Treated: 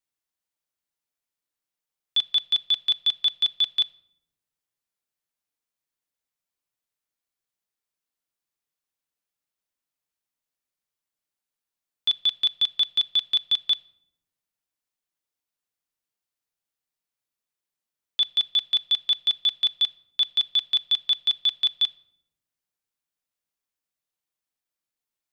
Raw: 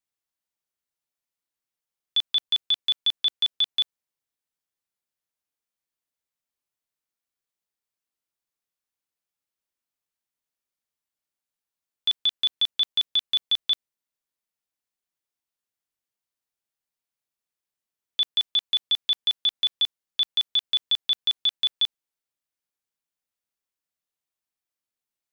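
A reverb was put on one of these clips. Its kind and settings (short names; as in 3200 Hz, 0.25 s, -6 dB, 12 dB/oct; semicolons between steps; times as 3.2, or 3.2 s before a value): shoebox room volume 2600 m³, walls furnished, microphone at 0.45 m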